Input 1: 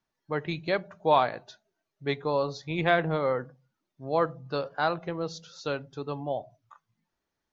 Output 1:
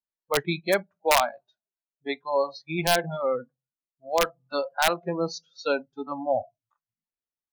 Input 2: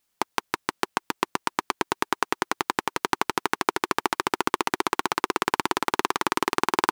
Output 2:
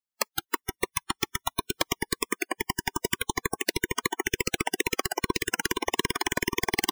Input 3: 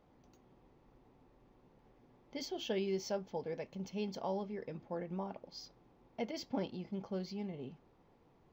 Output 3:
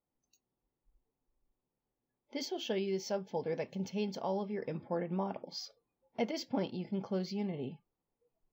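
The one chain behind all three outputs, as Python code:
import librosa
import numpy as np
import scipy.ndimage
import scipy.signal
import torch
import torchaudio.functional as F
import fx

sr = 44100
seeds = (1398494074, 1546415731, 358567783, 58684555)

y = fx.rider(x, sr, range_db=3, speed_s=0.5)
y = (np.mod(10.0 ** (14.5 / 20.0) * y + 1.0, 2.0) - 1.0) / 10.0 ** (14.5 / 20.0)
y = fx.noise_reduce_blind(y, sr, reduce_db=28)
y = y * 10.0 ** (4.0 / 20.0)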